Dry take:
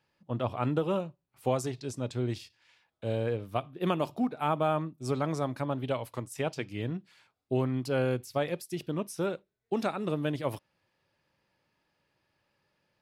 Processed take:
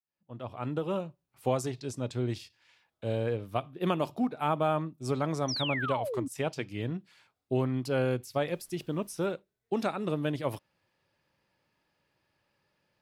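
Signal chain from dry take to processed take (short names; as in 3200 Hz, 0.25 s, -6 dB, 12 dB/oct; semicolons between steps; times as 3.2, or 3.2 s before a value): opening faded in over 1.20 s; 5.48–6.28 painted sound fall 250–6100 Hz -34 dBFS; 8.5–9.32 added noise pink -69 dBFS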